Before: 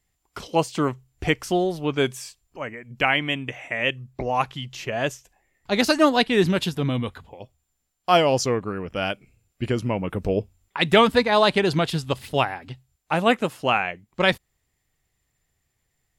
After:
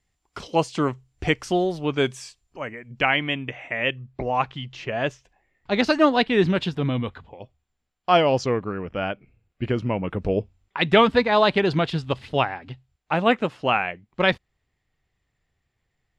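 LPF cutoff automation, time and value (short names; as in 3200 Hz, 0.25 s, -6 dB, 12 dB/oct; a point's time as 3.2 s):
2.61 s 7100 Hz
3.5 s 3700 Hz
8.78 s 3700 Hz
9.07 s 2000 Hz
9.97 s 3900 Hz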